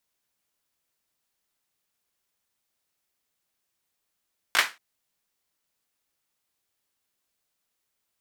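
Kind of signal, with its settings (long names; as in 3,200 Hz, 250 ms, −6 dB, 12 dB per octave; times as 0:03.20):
synth clap length 0.23 s, bursts 3, apart 18 ms, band 1,700 Hz, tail 0.25 s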